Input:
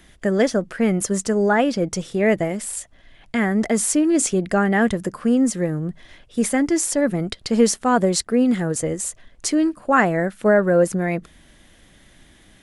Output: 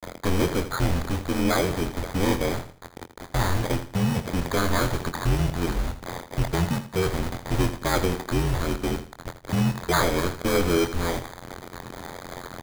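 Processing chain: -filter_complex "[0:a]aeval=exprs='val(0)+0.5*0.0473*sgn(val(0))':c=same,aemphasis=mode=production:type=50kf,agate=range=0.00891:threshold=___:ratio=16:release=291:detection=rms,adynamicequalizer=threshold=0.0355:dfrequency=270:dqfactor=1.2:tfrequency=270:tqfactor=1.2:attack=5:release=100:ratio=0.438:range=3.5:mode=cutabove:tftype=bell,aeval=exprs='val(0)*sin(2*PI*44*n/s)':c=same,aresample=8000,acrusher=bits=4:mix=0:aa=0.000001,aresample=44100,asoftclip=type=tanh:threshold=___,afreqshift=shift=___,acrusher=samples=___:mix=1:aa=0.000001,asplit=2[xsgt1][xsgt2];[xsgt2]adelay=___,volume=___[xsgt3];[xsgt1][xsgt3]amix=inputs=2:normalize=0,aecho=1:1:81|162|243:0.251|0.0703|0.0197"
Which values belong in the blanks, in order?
0.0708, 0.15, -150, 16, 24, 0.355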